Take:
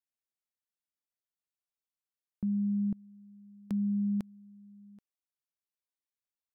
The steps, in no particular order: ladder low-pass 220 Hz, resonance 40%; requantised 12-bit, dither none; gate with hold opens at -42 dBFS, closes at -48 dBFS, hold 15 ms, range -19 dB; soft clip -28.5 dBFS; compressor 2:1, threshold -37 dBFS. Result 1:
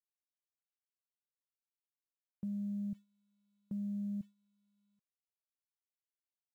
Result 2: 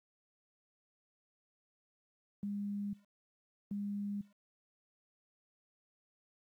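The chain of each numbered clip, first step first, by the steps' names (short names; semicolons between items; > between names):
ladder low-pass > compressor > soft clip > requantised > gate with hold; soft clip > ladder low-pass > compressor > gate with hold > requantised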